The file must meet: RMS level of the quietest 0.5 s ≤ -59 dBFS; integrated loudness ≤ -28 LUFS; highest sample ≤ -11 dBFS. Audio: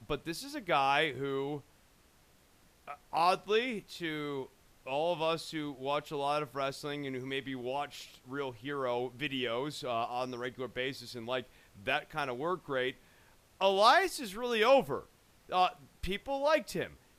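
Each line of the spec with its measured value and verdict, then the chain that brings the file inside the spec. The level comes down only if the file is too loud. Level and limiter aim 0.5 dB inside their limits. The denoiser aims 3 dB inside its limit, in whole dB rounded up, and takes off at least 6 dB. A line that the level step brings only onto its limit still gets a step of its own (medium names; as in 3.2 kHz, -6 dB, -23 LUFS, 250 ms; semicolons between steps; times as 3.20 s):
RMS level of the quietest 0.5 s -64 dBFS: pass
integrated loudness -33.0 LUFS: pass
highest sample -12.5 dBFS: pass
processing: none needed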